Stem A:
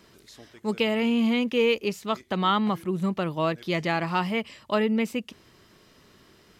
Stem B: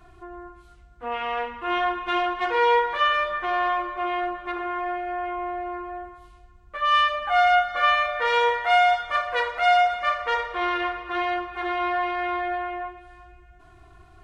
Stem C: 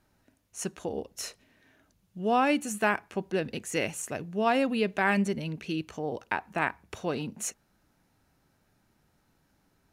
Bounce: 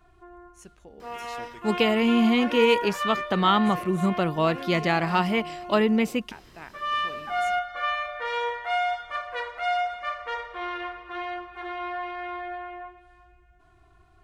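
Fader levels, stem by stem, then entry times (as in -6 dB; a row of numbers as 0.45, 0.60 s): +2.5, -7.5, -15.0 dB; 1.00, 0.00, 0.00 s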